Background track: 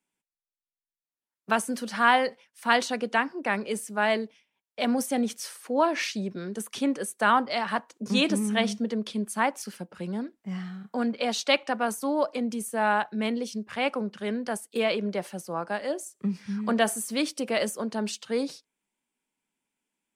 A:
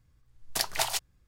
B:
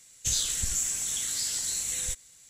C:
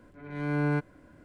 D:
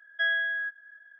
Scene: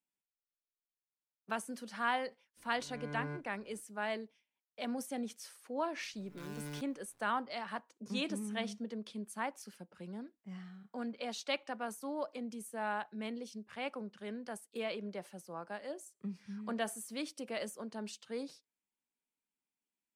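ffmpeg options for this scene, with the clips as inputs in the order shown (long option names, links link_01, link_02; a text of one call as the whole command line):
ffmpeg -i bed.wav -i cue0.wav -i cue1.wav -i cue2.wav -filter_complex "[3:a]asplit=2[link_01][link_02];[0:a]volume=-13dB[link_03];[link_01]asplit=2[link_04][link_05];[link_05]adelay=36,volume=-10.5dB[link_06];[link_04][link_06]amix=inputs=2:normalize=0[link_07];[link_02]acrusher=bits=6:dc=4:mix=0:aa=0.000001[link_08];[link_07]atrim=end=1.24,asetpts=PTS-STARTPTS,volume=-14.5dB,afade=type=in:duration=0.004:curve=hsin,afade=type=out:start_time=1.236:duration=0.004:curve=hsin,adelay=2570[link_09];[link_08]atrim=end=1.24,asetpts=PTS-STARTPTS,volume=-17.5dB,afade=type=in:duration=0.004:curve=hsin,afade=type=out:start_time=1.236:duration=0.004:curve=hsin,adelay=6010[link_10];[link_03][link_09][link_10]amix=inputs=3:normalize=0" out.wav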